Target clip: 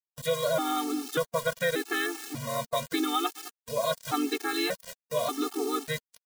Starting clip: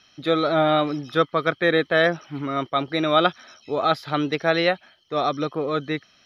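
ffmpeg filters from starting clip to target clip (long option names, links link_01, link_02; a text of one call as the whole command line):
ffmpeg -i in.wav -filter_complex "[0:a]highshelf=frequency=4300:gain=-11,asplit=2[link_01][link_02];[link_02]adelay=211,lowpass=frequency=4800:poles=1,volume=-23dB,asplit=2[link_03][link_04];[link_04]adelay=211,lowpass=frequency=4800:poles=1,volume=0.26[link_05];[link_01][link_03][link_05]amix=inputs=3:normalize=0,acompressor=threshold=-22dB:ratio=5,asplit=2[link_06][link_07];[link_07]asetrate=37084,aresample=44100,atempo=1.18921,volume=-7dB[link_08];[link_06][link_08]amix=inputs=2:normalize=0,aeval=exprs='val(0)*gte(abs(val(0)),0.0141)':channel_layout=same,bass=frequency=250:gain=-4,treble=frequency=4000:gain=15,acompressor=mode=upward:threshold=-36dB:ratio=2.5,afftfilt=real='re*gt(sin(2*PI*0.85*pts/sr)*(1-2*mod(floor(b*sr/1024/230),2)),0)':imag='im*gt(sin(2*PI*0.85*pts/sr)*(1-2*mod(floor(b*sr/1024/230),2)),0)':win_size=1024:overlap=0.75" out.wav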